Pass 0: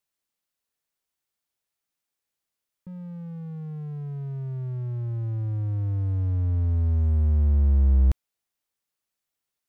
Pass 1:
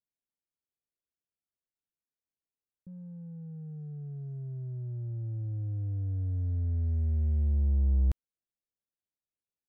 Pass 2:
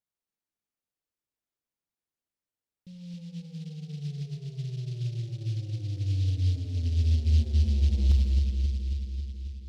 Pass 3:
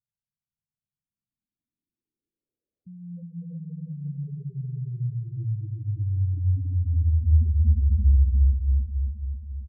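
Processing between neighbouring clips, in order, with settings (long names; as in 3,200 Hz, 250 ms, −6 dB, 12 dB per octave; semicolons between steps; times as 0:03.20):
adaptive Wiener filter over 41 samples; level −6.5 dB
bucket-brigade delay 271 ms, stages 1,024, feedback 68%, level −4 dB; convolution reverb RT60 1.7 s, pre-delay 28 ms, DRR 3.5 dB; short delay modulated by noise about 3,700 Hz, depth 0.089 ms
low-pass filter sweep 140 Hz → 1,100 Hz, 0:00.80–0:03.88; gate on every frequency bin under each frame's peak −15 dB strong; repeating echo 359 ms, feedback 41%, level −5 dB; level +2 dB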